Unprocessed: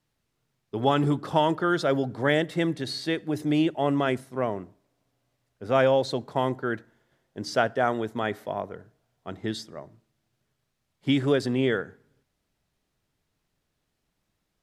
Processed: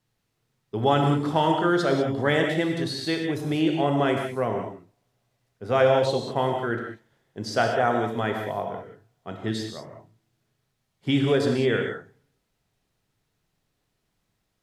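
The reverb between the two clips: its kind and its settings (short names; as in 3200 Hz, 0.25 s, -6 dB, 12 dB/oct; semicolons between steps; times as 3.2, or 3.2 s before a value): non-linear reverb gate 0.22 s flat, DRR 2 dB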